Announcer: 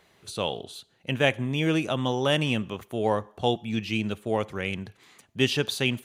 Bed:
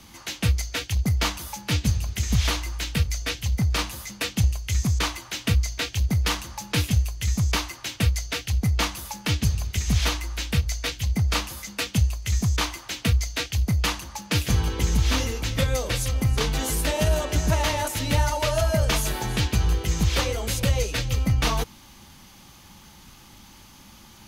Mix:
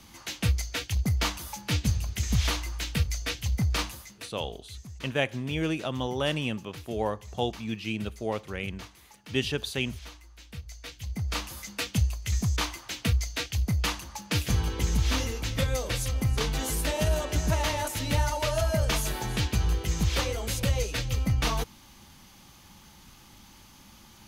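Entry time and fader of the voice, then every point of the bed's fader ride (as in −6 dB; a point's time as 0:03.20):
3.95 s, −4.5 dB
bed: 0:03.86 −3.5 dB
0:04.39 −21 dB
0:10.38 −21 dB
0:11.56 −4 dB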